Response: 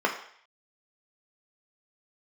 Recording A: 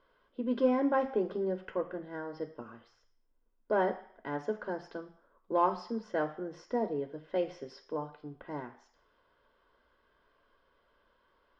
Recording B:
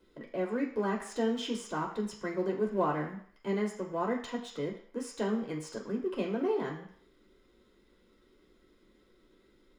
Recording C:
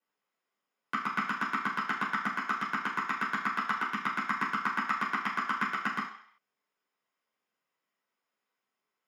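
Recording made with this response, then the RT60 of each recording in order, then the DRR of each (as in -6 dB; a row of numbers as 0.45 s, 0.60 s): B; 0.60 s, 0.60 s, 0.60 s; 6.5 dB, 0.5 dB, -5.5 dB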